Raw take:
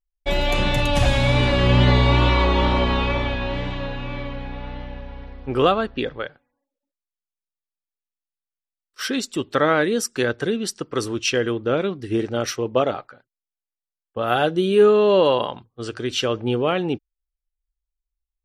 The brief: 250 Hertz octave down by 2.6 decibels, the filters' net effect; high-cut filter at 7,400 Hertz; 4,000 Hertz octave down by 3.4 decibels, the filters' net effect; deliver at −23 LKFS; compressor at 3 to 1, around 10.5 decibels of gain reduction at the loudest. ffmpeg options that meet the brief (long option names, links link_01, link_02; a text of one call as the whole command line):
ffmpeg -i in.wav -af "lowpass=7400,equalizer=frequency=250:width_type=o:gain=-3.5,equalizer=frequency=4000:width_type=o:gain=-4.5,acompressor=threshold=-27dB:ratio=3,volume=7dB" out.wav